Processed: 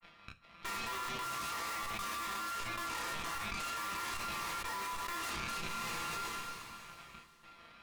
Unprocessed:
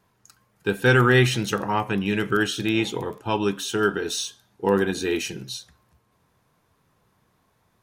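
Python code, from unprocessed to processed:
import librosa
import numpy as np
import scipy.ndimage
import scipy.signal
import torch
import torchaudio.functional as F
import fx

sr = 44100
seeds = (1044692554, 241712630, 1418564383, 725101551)

p1 = np.r_[np.sort(x[:len(x) // 32 * 32].reshape(-1, 32), axis=1).ravel(), x[len(x) // 32 * 32:]]
p2 = fx.double_bandpass(p1, sr, hz=1500.0, octaves=0.74)
p3 = p2 + 0.95 * np.pad(p2, (int(5.9 * sr / 1000.0), 0))[:len(p2)]
p4 = fx.step_gate(p3, sr, bpm=174, pattern='xxx..xxxx', floor_db=-24.0, edge_ms=4.5)
p5 = fx.granulator(p4, sr, seeds[0], grain_ms=100.0, per_s=20.0, spray_ms=32.0, spread_st=0)
p6 = 10.0 ** (-35.5 / 20.0) * np.tanh(p5 / 10.0 ** (-35.5 / 20.0))
p7 = fx.cheby_harmonics(p6, sr, harmonics=(7, 8), levels_db=(-18, -8), full_scale_db=-35.5)
p8 = p7 + fx.room_early_taps(p7, sr, ms=(18, 31), db=(-4.5, -3.5), dry=0)
p9 = fx.rev_double_slope(p8, sr, seeds[1], early_s=0.28, late_s=2.7, knee_db=-18, drr_db=8.5)
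p10 = fx.env_flatten(p9, sr, amount_pct=100)
y = p10 * 10.0 ** (-7.5 / 20.0)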